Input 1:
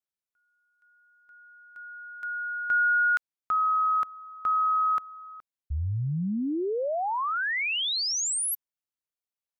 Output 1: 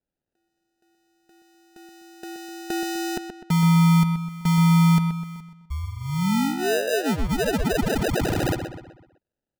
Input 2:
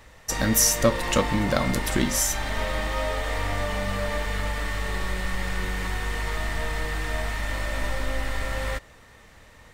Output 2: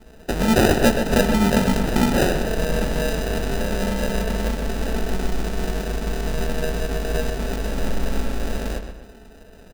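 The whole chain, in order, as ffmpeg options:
ffmpeg -i in.wav -filter_complex "[0:a]aecho=1:1:4.6:0.73,acrusher=samples=40:mix=1:aa=0.000001,asplit=2[link_01][link_02];[link_02]adelay=126,lowpass=frequency=4200:poles=1,volume=-7.5dB,asplit=2[link_03][link_04];[link_04]adelay=126,lowpass=frequency=4200:poles=1,volume=0.44,asplit=2[link_05][link_06];[link_06]adelay=126,lowpass=frequency=4200:poles=1,volume=0.44,asplit=2[link_07][link_08];[link_08]adelay=126,lowpass=frequency=4200:poles=1,volume=0.44,asplit=2[link_09][link_10];[link_10]adelay=126,lowpass=frequency=4200:poles=1,volume=0.44[link_11];[link_03][link_05][link_07][link_09][link_11]amix=inputs=5:normalize=0[link_12];[link_01][link_12]amix=inputs=2:normalize=0,volume=2.5dB" out.wav

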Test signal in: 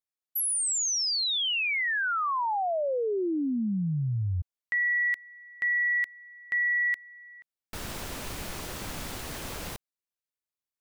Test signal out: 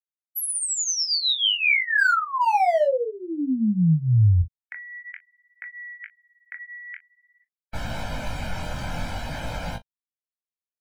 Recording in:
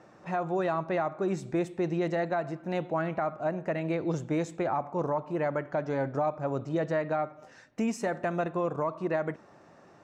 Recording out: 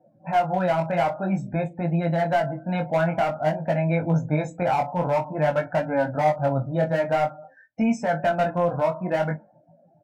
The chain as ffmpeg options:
ffmpeg -i in.wav -filter_complex "[0:a]afftdn=noise_reduction=35:noise_floor=-45,highshelf=frequency=4900:gain=-8.5,aecho=1:1:1.3:0.87,acrossover=split=310|2200[link_01][link_02][link_03];[link_02]volume=24dB,asoftclip=hard,volume=-24dB[link_04];[link_01][link_04][link_03]amix=inputs=3:normalize=0,flanger=delay=17.5:depth=5.8:speed=0.51,asplit=2[link_05][link_06];[link_06]aecho=0:1:25|38:0.168|0.141[link_07];[link_05][link_07]amix=inputs=2:normalize=0,volume=8.5dB" out.wav

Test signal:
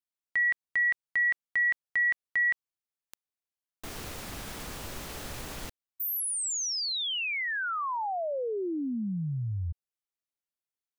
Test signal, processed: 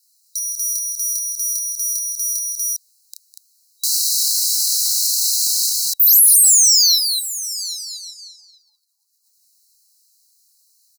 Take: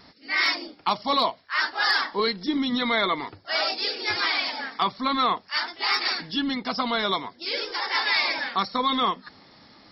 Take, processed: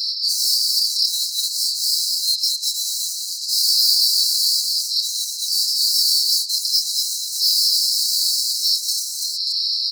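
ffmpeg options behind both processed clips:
ffmpeg -i in.wav -filter_complex "[0:a]highpass=frequency=180:width=0.5412,highpass=frequency=180:width=1.3066,asplit=2[link_01][link_02];[link_02]highpass=frequency=720:poles=1,volume=33dB,asoftclip=type=tanh:threshold=-9.5dB[link_03];[link_01][link_03]amix=inputs=2:normalize=0,lowpass=frequency=3800:poles=1,volume=-6dB,asplit=2[link_04][link_05];[link_05]aecho=0:1:29.15|204.1|239.1:0.708|0.251|0.631[link_06];[link_04][link_06]amix=inputs=2:normalize=0,acompressor=threshold=-19dB:ratio=6:attack=1.3:release=89:knee=1,aexciter=amount=5.3:drive=5.3:freq=3100,afftfilt=real='re*(1-between(b*sr/4096,570,3900))':imag='im*(1-between(b*sr/4096,570,3900))':win_size=4096:overlap=0.75,adynamicequalizer=threshold=0.01:dfrequency=420:dqfactor=0.84:tfrequency=420:tqfactor=0.84:attack=5:release=100:ratio=0.375:range=2:mode=boostabove:tftype=bell,afftfilt=real='re*gte(b*sr/1024,830*pow(1800/830,0.5+0.5*sin(2*PI*3.5*pts/sr)))':imag='im*gte(b*sr/1024,830*pow(1800/830,0.5+0.5*sin(2*PI*3.5*pts/sr)))':win_size=1024:overlap=0.75,volume=-3.5dB" out.wav

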